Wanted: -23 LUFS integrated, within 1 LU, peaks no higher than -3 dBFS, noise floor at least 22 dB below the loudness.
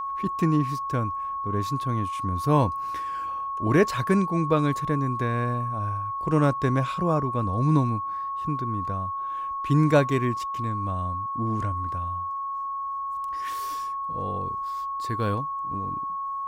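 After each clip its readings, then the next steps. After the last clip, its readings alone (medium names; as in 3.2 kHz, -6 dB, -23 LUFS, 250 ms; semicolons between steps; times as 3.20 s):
steady tone 1.1 kHz; tone level -28 dBFS; loudness -26.5 LUFS; peak level -7.5 dBFS; loudness target -23.0 LUFS
-> band-stop 1.1 kHz, Q 30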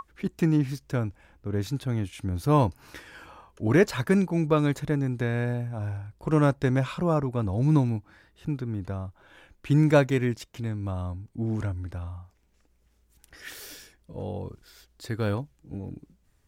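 steady tone not found; loudness -27.0 LUFS; peak level -8.0 dBFS; loudness target -23.0 LUFS
-> trim +4 dB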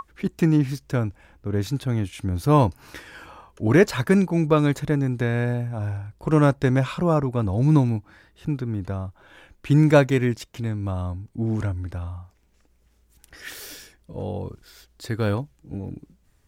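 loudness -23.0 LUFS; peak level -4.0 dBFS; noise floor -62 dBFS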